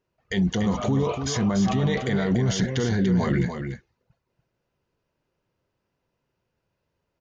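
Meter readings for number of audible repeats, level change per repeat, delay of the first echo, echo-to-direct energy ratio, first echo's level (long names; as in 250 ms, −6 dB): 1, repeats not evenly spaced, 290 ms, −7.5 dB, −7.5 dB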